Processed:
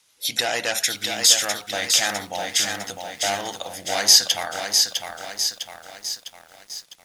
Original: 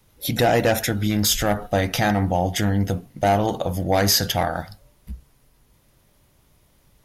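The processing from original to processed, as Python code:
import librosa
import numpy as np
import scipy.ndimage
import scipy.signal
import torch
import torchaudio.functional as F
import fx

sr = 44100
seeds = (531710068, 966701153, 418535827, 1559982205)

y = fx.weighting(x, sr, curve='ITU-R 468')
y = fx.echo_crushed(y, sr, ms=654, feedback_pct=55, bits=7, wet_db=-5.0)
y = y * librosa.db_to_amplitude(-5.0)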